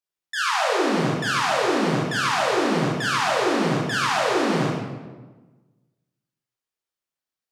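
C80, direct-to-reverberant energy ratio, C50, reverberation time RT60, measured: 2.0 dB, -5.5 dB, -0.5 dB, 1.3 s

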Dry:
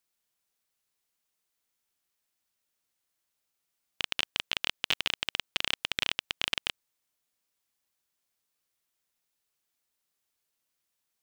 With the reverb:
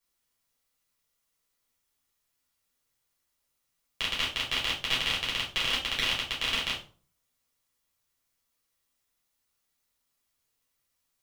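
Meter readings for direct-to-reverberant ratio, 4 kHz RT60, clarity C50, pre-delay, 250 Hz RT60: -6.5 dB, 0.30 s, 7.5 dB, 7 ms, 0.55 s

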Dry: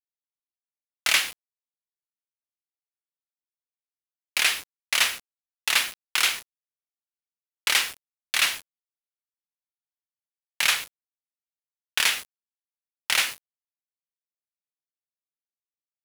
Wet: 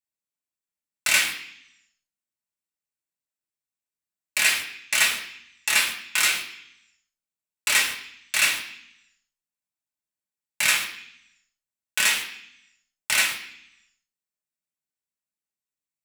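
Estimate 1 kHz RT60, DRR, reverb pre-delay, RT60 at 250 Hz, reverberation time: 0.65 s, -2.0 dB, 3 ms, 1.0 s, 0.65 s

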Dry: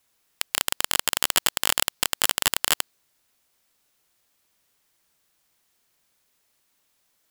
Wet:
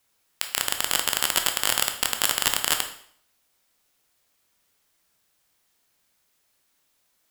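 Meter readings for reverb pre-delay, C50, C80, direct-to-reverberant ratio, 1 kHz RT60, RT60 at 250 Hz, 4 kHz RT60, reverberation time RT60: 7 ms, 9.0 dB, 12.5 dB, 5.0 dB, 0.60 s, 0.60 s, 0.55 s, 0.60 s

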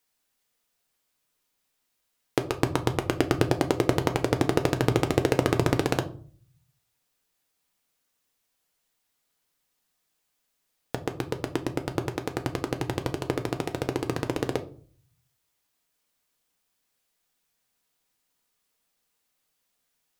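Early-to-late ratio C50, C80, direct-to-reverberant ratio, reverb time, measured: 15.0 dB, 20.5 dB, 6.0 dB, 0.45 s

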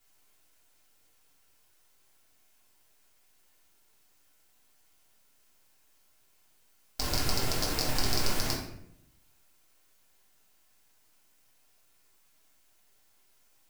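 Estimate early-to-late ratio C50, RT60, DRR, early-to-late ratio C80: 4.5 dB, 0.75 s, -3.0 dB, 8.0 dB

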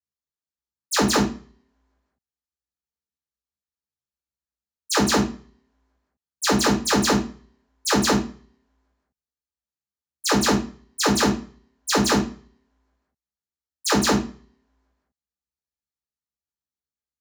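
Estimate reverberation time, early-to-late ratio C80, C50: 0.45 s, 14.5 dB, 9.5 dB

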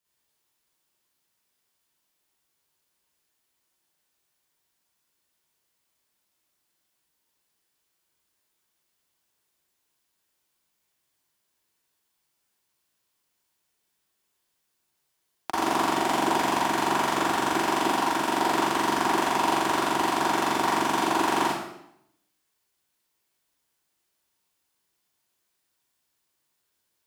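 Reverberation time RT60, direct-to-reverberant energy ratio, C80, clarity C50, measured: 0.75 s, -8.5 dB, 2.0 dB, -3.5 dB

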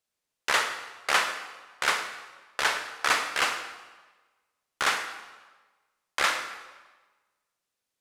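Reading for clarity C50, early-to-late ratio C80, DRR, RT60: 8.0 dB, 10.0 dB, 7.5 dB, 1.3 s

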